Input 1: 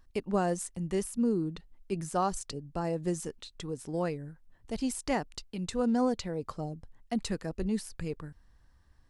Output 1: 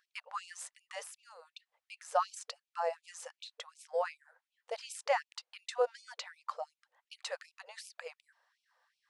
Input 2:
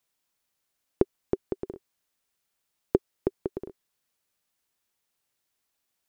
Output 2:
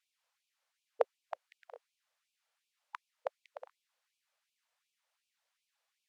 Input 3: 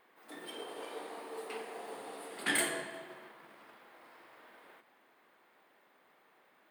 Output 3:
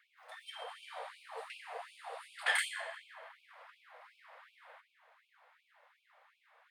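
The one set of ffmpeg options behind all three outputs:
-af "aemphasis=mode=reproduction:type=bsi,afftfilt=real='re*gte(b*sr/1024,450*pow(2300/450,0.5+0.5*sin(2*PI*2.7*pts/sr)))':imag='im*gte(b*sr/1024,450*pow(2300/450,0.5+0.5*sin(2*PI*2.7*pts/sr)))':win_size=1024:overlap=0.75,volume=1.41"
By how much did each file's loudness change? -6.0 LU, -9.0 LU, -1.0 LU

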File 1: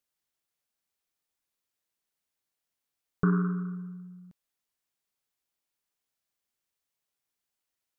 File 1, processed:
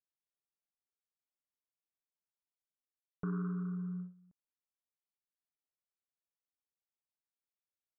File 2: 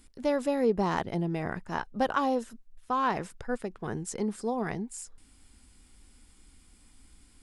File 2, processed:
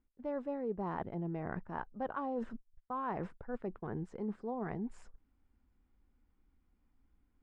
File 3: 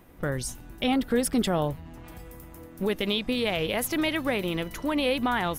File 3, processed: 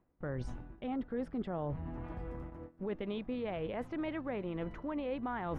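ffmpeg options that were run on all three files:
-af "agate=range=0.112:threshold=0.00631:ratio=16:detection=peak,lowpass=1400,areverse,acompressor=threshold=0.00708:ratio=4,areverse,volume=1.78"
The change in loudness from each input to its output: -9.5 LU, -9.5 LU, -12.5 LU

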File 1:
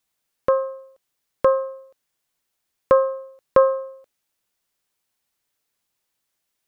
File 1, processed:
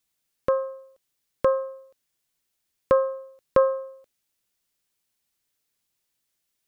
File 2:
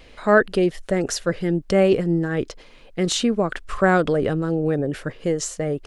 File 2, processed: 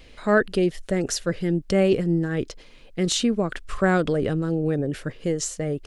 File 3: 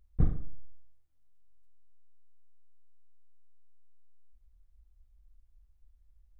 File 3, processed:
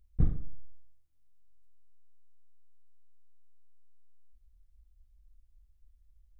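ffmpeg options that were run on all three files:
-af "equalizer=f=910:t=o:w=2.3:g=-5.5"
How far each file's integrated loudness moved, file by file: -4.0 LU, -2.5 LU, -0.5 LU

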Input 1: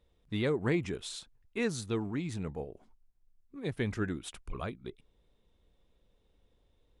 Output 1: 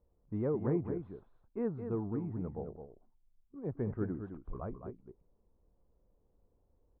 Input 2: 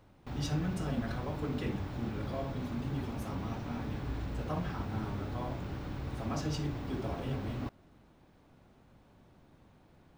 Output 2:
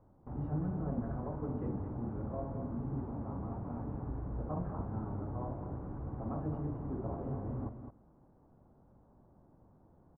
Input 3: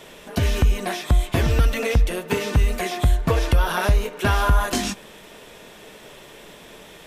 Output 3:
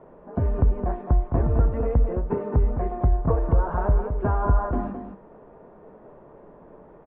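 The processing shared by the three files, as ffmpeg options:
-filter_complex "[0:a]lowpass=f=1100:w=0.5412,lowpass=f=1100:w=1.3066,asplit=2[s0][s1];[s1]aecho=0:1:214:0.398[s2];[s0][s2]amix=inputs=2:normalize=0,volume=0.75"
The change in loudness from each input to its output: -2.5 LU, -2.5 LU, -2.5 LU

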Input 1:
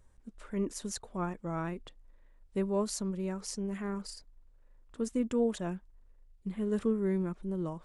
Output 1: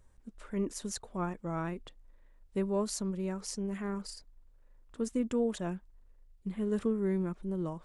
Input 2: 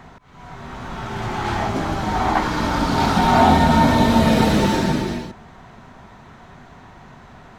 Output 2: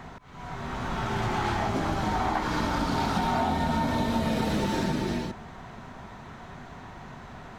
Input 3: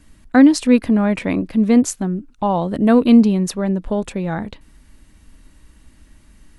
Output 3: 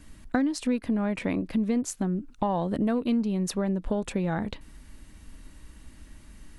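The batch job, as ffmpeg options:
-af "aeval=exprs='0.891*(cos(1*acos(clip(val(0)/0.891,-1,1)))-cos(1*PI/2))+0.01*(cos(8*acos(clip(val(0)/0.891,-1,1)))-cos(8*PI/2))':c=same,acompressor=threshold=0.0631:ratio=6"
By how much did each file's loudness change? -0.5 LU, -10.0 LU, -12.0 LU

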